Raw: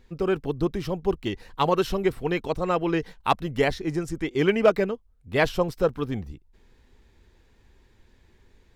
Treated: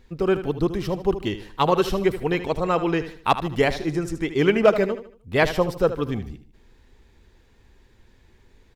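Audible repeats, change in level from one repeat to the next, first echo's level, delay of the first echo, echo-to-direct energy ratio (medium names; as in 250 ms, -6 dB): 3, -8.5 dB, -12.0 dB, 76 ms, -11.5 dB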